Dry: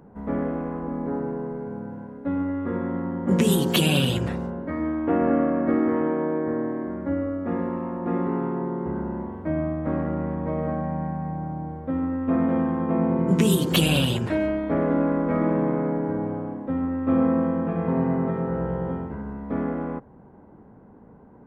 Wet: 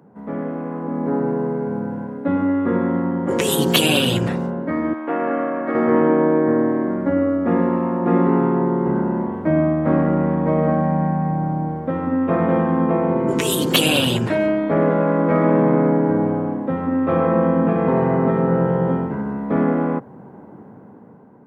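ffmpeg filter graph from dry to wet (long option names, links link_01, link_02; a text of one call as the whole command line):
ffmpeg -i in.wav -filter_complex "[0:a]asettb=1/sr,asplit=3[link_01][link_02][link_03];[link_01]atrim=end=4.934[link_04];[link_02]atrim=start=4.93:end=5.75,asetpts=PTS-STARTPTS,afade=type=in:duration=0.004:curve=qsin,afade=type=out:start_time=0.816:duration=0.004:curve=qsin,highpass=frequency=1100:poles=1,aemphasis=mode=reproduction:type=cd[link_05];[link_03]atrim=start=5.746[link_06];[link_04][link_05]acrossfade=duration=0.004:curve1=hsin:curve2=qsin[link_07];[link_07][link_06]acrossfade=duration=0.004:curve1=qsin:curve2=hsin,highpass=frequency=110:width=0.5412,highpass=frequency=110:width=1.3066,afftfilt=real='re*lt(hypot(re,im),0.631)':imag='im*lt(hypot(re,im),0.631)':win_size=1024:overlap=0.75,dynaudnorm=framelen=290:gausssize=7:maxgain=9.5dB" out.wav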